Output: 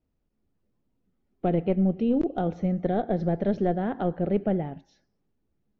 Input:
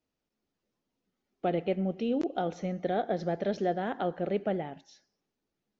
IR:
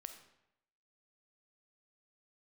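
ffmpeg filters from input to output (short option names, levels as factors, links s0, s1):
-af "aeval=exprs='0.158*(cos(1*acos(clip(val(0)/0.158,-1,1)))-cos(1*PI/2))+0.0141*(cos(4*acos(clip(val(0)/0.158,-1,1)))-cos(4*PI/2))+0.01*(cos(6*acos(clip(val(0)/0.158,-1,1)))-cos(6*PI/2))+0.00224*(cos(8*acos(clip(val(0)/0.158,-1,1)))-cos(8*PI/2))':c=same,aemphasis=mode=reproduction:type=riaa"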